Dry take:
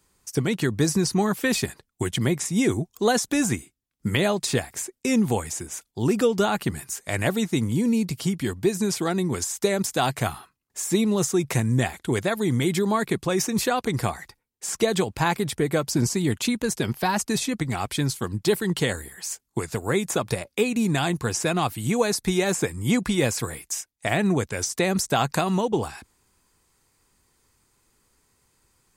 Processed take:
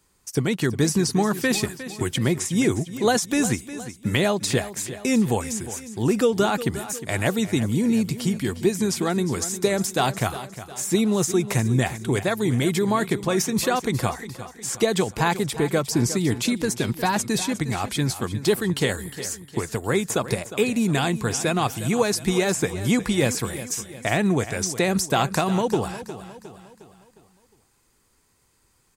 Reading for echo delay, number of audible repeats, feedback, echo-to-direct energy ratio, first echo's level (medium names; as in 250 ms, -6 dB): 358 ms, 4, 47%, -12.5 dB, -13.5 dB